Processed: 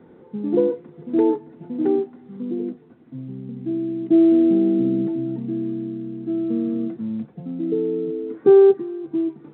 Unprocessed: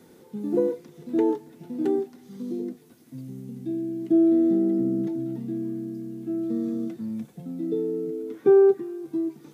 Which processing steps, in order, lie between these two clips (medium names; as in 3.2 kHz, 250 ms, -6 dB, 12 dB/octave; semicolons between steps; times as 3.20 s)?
low-pass 1.5 kHz 12 dB/octave; trim +4.5 dB; µ-law 64 kbps 8 kHz